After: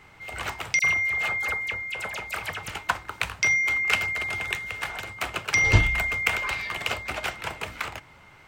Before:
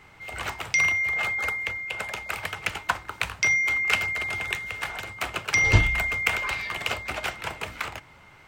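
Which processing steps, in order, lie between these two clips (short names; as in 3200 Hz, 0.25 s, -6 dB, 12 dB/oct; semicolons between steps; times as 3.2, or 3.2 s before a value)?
0.79–2.68 dispersion lows, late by 47 ms, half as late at 2900 Hz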